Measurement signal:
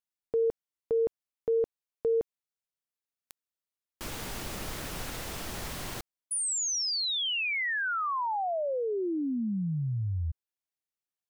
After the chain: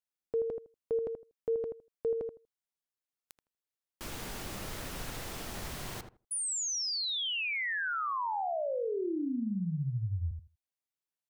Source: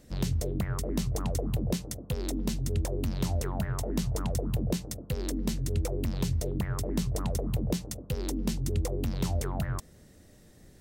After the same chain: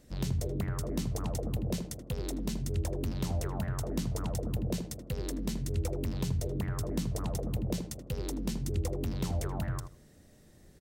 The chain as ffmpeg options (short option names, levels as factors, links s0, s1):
-filter_complex "[0:a]asplit=2[s0][s1];[s1]adelay=80,lowpass=f=1300:p=1,volume=0.501,asplit=2[s2][s3];[s3]adelay=80,lowpass=f=1300:p=1,volume=0.17,asplit=2[s4][s5];[s5]adelay=80,lowpass=f=1300:p=1,volume=0.17[s6];[s0][s2][s4][s6]amix=inputs=4:normalize=0,volume=0.668"